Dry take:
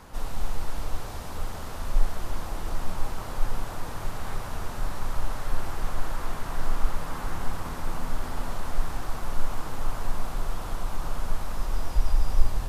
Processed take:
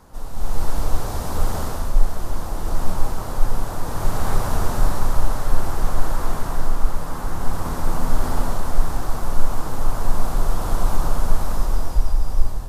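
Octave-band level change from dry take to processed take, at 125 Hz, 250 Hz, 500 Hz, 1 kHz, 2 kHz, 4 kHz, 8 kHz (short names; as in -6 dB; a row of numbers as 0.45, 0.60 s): +8.5 dB, +9.0 dB, +8.5 dB, +7.5 dB, +4.0 dB, +4.5 dB, n/a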